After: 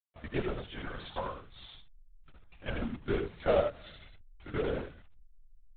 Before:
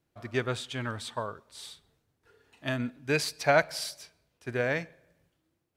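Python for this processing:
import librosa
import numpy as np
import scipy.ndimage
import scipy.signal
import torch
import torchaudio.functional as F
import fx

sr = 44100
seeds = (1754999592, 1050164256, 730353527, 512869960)

p1 = fx.pitch_glide(x, sr, semitones=-3.0, runs='starting unshifted')
p2 = fx.env_lowpass_down(p1, sr, base_hz=810.0, full_db=-26.0)
p3 = fx.quant_companded(p2, sr, bits=4)
p4 = fx.backlash(p3, sr, play_db=-28.0)
p5 = p3 + (p4 * 10.0 ** (-9.5 / 20.0))
p6 = p5 + 10.0 ** (-5.5 / 20.0) * np.pad(p5, (int(84 * sr / 1000.0), 0))[:len(p5)]
p7 = fx.lpc_vocoder(p6, sr, seeds[0], excitation='whisper', order=16)
y = p7 * 10.0 ** (-4.5 / 20.0)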